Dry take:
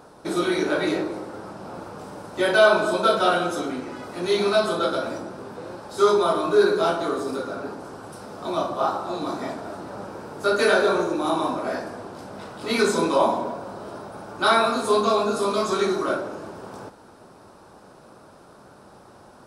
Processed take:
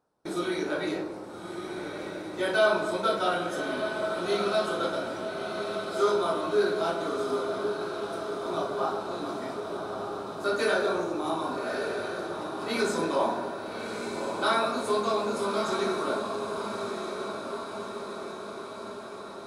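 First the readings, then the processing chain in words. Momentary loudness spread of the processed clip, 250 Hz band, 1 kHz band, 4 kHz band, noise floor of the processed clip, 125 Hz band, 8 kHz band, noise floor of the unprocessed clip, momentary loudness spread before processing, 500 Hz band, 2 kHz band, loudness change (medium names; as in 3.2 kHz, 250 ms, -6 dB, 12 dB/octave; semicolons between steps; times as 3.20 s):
11 LU, -5.5 dB, -5.5 dB, -5.5 dB, -40 dBFS, -5.5 dB, -5.5 dB, -49 dBFS, 19 LU, -5.5 dB, -5.5 dB, -7.5 dB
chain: echo that smears into a reverb 1249 ms, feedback 63%, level -6 dB; gate with hold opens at -30 dBFS; trim -7 dB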